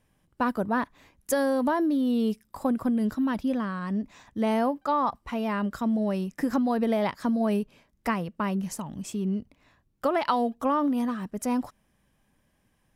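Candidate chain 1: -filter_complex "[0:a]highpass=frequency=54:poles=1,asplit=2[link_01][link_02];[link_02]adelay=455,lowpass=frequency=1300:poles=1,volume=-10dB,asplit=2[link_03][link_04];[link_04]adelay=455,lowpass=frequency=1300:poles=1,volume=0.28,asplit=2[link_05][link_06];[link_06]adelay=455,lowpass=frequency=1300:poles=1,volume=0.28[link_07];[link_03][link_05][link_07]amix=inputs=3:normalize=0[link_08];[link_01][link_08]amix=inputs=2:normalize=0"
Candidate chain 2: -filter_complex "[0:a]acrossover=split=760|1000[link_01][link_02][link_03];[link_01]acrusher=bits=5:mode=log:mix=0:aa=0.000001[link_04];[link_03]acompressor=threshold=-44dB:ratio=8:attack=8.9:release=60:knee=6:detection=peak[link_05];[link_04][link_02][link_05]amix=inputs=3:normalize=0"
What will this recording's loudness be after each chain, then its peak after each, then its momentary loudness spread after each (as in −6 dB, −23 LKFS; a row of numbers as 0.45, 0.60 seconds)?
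−27.5, −28.0 LKFS; −11.0, −13.5 dBFS; 10, 7 LU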